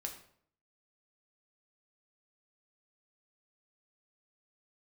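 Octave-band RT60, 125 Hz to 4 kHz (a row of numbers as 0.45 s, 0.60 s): 0.70 s, 0.65 s, 0.65 s, 0.55 s, 0.50 s, 0.45 s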